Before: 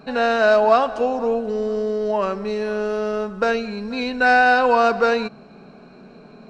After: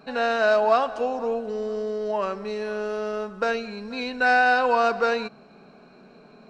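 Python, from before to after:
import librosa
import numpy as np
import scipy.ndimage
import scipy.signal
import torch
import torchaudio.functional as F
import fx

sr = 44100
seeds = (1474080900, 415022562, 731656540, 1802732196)

y = fx.low_shelf(x, sr, hz=300.0, db=-6.0)
y = y * librosa.db_to_amplitude(-3.5)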